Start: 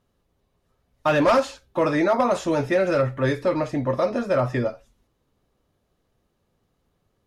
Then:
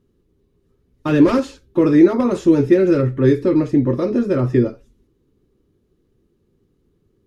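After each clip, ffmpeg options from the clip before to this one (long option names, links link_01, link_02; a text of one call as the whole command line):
ffmpeg -i in.wav -af "lowshelf=frequency=500:width_type=q:width=3:gain=9,volume=-2dB" out.wav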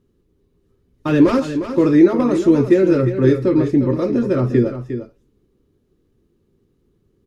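ffmpeg -i in.wav -af "aecho=1:1:356:0.316" out.wav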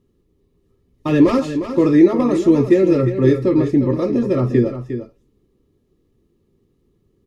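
ffmpeg -i in.wav -af "asuperstop=centerf=1500:order=20:qfactor=6.4" out.wav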